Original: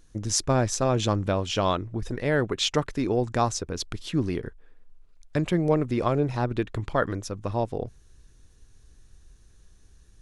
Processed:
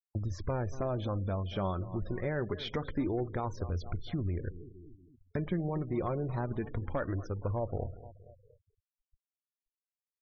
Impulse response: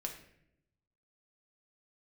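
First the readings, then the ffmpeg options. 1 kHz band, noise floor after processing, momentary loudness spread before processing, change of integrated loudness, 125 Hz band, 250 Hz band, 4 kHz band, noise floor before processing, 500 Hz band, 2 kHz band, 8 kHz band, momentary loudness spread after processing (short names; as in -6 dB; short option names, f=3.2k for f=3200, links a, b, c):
-11.0 dB, under -85 dBFS, 9 LU, -9.0 dB, -5.5 dB, -8.5 dB, -16.0 dB, -55 dBFS, -9.5 dB, -11.5 dB, under -25 dB, 6 LU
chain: -filter_complex "[0:a]agate=range=-29dB:threshold=-43dB:ratio=16:detection=peak,aemphasis=mode=reproduction:type=50fm,asplit=2[a][b];[b]adelay=234,lowpass=f=4.7k:p=1,volume=-20.5dB,asplit=2[c][d];[d]adelay=234,lowpass=f=4.7k:p=1,volume=0.54,asplit=2[e][f];[f]adelay=234,lowpass=f=4.7k:p=1,volume=0.54,asplit=2[g][h];[h]adelay=234,lowpass=f=4.7k:p=1,volume=0.54[i];[a][c][e][g][i]amix=inputs=5:normalize=0,acrossover=split=2900[j][k];[k]acompressor=threshold=-46dB:ratio=4:attack=1:release=60[l];[j][l]amix=inputs=2:normalize=0,equalizer=f=87:t=o:w=0.5:g=13,alimiter=limit=-15.5dB:level=0:latency=1:release=46,acompressor=threshold=-29dB:ratio=2.5,aeval=exprs='clip(val(0),-1,0.0562)':c=same,flanger=delay=1.4:depth=4.1:regen=54:speed=0.25:shape=sinusoidal,asplit=2[m][n];[1:a]atrim=start_sample=2205,highshelf=f=7.4k:g=-7[o];[n][o]afir=irnorm=-1:irlink=0,volume=-10dB[p];[m][p]amix=inputs=2:normalize=0,afftfilt=real='re*gte(hypot(re,im),0.00447)':imag='im*gte(hypot(re,im),0.00447)':win_size=1024:overlap=0.75,asuperstop=centerf=2700:order=4:qfactor=4.7"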